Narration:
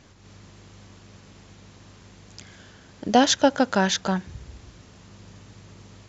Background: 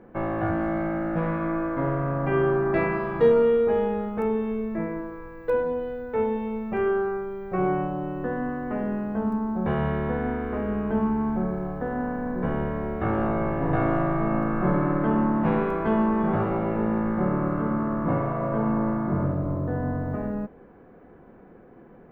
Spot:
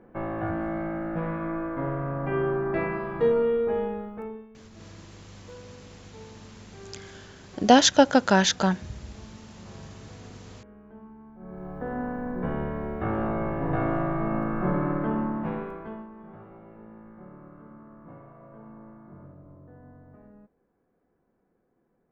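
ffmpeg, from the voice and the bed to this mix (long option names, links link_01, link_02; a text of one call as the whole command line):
ffmpeg -i stem1.wav -i stem2.wav -filter_complex "[0:a]adelay=4550,volume=1.5dB[link_01];[1:a]volume=16dB,afade=type=out:start_time=3.81:duration=0.68:silence=0.112202,afade=type=in:start_time=11.38:duration=0.53:silence=0.1,afade=type=out:start_time=14.9:duration=1.18:silence=0.105925[link_02];[link_01][link_02]amix=inputs=2:normalize=0" out.wav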